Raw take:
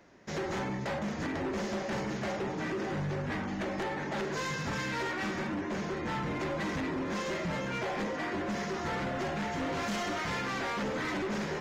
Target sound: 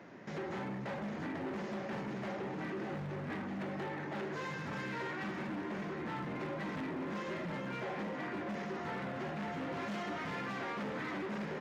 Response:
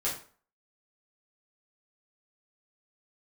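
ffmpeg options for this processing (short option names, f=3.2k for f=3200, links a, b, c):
-af "alimiter=level_in=18dB:limit=-24dB:level=0:latency=1,volume=-18dB,highpass=130,bass=f=250:g=10,treble=f=4k:g=-12,aecho=1:1:92|610:0.1|0.335,asoftclip=type=hard:threshold=-39dB,lowshelf=f=170:g=-10,volume=6dB"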